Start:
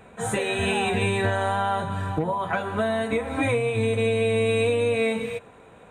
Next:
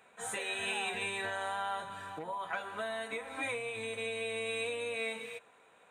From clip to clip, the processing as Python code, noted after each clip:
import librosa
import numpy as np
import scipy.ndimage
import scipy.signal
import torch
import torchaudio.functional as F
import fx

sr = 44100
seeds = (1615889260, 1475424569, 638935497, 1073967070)

y = fx.highpass(x, sr, hz=1300.0, slope=6)
y = y * librosa.db_to_amplitude(-6.5)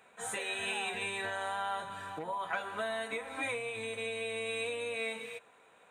y = fx.rider(x, sr, range_db=10, speed_s=2.0)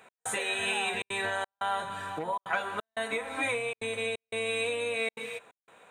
y = fx.step_gate(x, sr, bpm=177, pattern='x..xxxxxxxxx.xxx', floor_db=-60.0, edge_ms=4.5)
y = y * librosa.db_to_amplitude(5.5)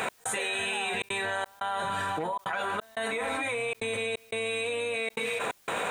y = fx.env_flatten(x, sr, amount_pct=100)
y = y * librosa.db_to_amplitude(-5.0)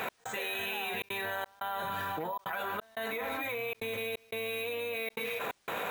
y = np.repeat(scipy.signal.resample_poly(x, 1, 3), 3)[:len(x)]
y = y * librosa.db_to_amplitude(-4.5)